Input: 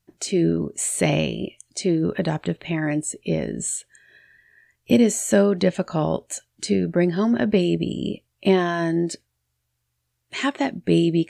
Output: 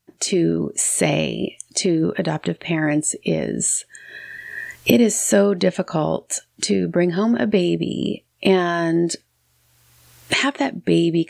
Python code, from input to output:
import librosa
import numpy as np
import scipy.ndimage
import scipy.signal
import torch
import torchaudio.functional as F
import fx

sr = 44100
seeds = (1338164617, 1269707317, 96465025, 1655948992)

y = fx.recorder_agc(x, sr, target_db=-12.5, rise_db_per_s=21.0, max_gain_db=30)
y = fx.low_shelf(y, sr, hz=93.0, db=-11.5)
y = y * librosa.db_to_amplitude(2.5)